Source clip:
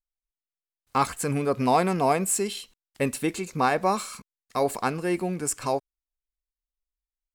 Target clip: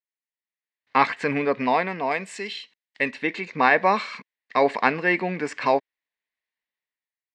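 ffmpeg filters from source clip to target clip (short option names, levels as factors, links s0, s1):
-filter_complex "[0:a]asettb=1/sr,asplit=3[s0][s1][s2];[s0]atrim=end=2.114[s3];[s1]atrim=start=2.11:end=3.11,asetpts=PTS-STARTPTS,afade=t=in:d=0.004:c=qsin,afade=t=out:st=0.996:d=0.004:c=qsin,aemphasis=mode=production:type=75kf[s4];[s2]atrim=start=3.106[s5];[s3][s4]acrossfade=d=0.004:c1=hsin:c2=qsin[s6];[s6][s5]acrossfade=d=0.004:c1=qsin:c2=hsin,dynaudnorm=f=210:g=7:m=5.96,highpass=320,equalizer=f=360:t=q:w=4:g=-8,equalizer=f=530:t=q:w=4:g=-4,equalizer=f=750:t=q:w=4:g=-5,equalizer=f=1300:t=q:w=4:g=-9,equalizer=f=1900:t=q:w=4:g=10,equalizer=f=3200:t=q:w=4:g=-3,lowpass=f=3700:w=0.5412,lowpass=f=3700:w=1.3066"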